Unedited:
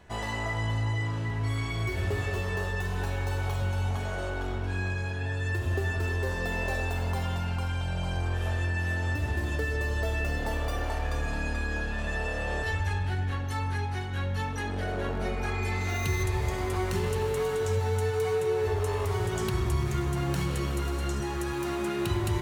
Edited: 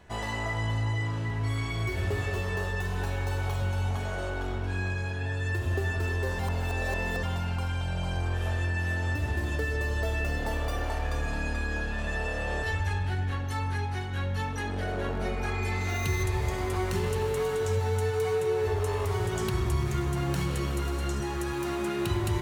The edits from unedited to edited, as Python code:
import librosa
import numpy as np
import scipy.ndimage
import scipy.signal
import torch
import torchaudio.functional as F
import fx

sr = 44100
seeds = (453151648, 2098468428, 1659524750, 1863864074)

y = fx.edit(x, sr, fx.reverse_span(start_s=6.39, length_s=0.84), tone=tone)